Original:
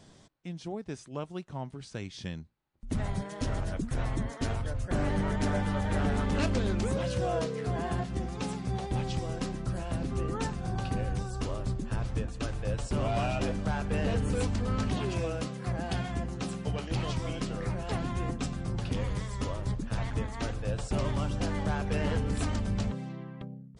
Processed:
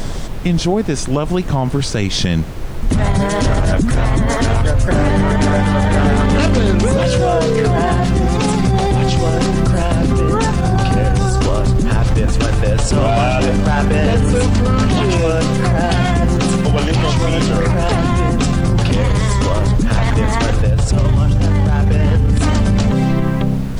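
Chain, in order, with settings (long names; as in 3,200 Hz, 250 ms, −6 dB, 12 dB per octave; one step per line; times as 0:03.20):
0:20.62–0:22.41: parametric band 80 Hz +13 dB 2.1 octaves
downward compressor, threshold −28 dBFS, peak gain reduction 13 dB
background noise brown −48 dBFS
boost into a limiter +32 dB
level −5.5 dB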